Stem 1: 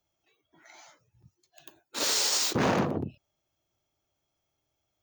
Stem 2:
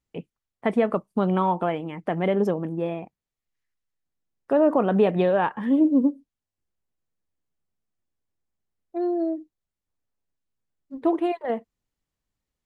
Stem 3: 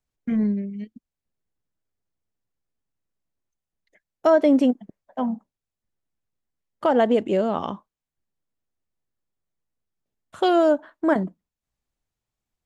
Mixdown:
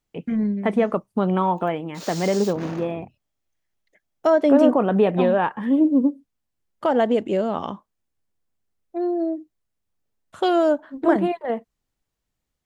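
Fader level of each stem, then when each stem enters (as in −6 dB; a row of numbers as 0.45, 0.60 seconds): −10.5, +1.5, −0.5 decibels; 0.00, 0.00, 0.00 seconds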